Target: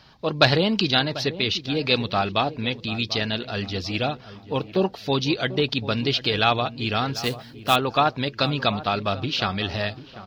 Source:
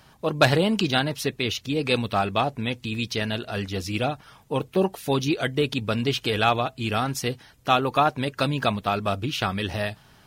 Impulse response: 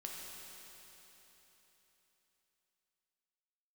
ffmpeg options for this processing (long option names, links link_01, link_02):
-filter_complex "[0:a]highshelf=frequency=6500:width_type=q:width=3:gain=-13,asettb=1/sr,asplit=3[link_01][link_02][link_03];[link_01]atrim=end=7.164[link_04];[link_02]atrim=start=7.16:end=7.76,asetpts=PTS-STARTPTS,afade=type=in:duration=0.004:curve=qsin,afade=type=out:start_time=0.596:duration=0.004:curve=qsin,acrusher=bits=3:mode=log:mix=0:aa=0.000001[link_05];[link_03]atrim=start=7.756[link_06];[link_04][link_05]acrossfade=duration=0.004:curve1=hsin:curve2=qsin[link_07];[link_07][link_06]acrossfade=duration=0.004:curve1=qsin:curve2=hsin,asplit=2[link_08][link_09];[link_09]adelay=742,lowpass=frequency=1100:poles=1,volume=-14dB,asplit=2[link_10][link_11];[link_11]adelay=742,lowpass=frequency=1100:poles=1,volume=0.43,asplit=2[link_12][link_13];[link_13]adelay=742,lowpass=frequency=1100:poles=1,volume=0.43,asplit=2[link_14][link_15];[link_15]adelay=742,lowpass=frequency=1100:poles=1,volume=0.43[link_16];[link_10][link_12][link_14][link_16]amix=inputs=4:normalize=0[link_17];[link_08][link_17]amix=inputs=2:normalize=0"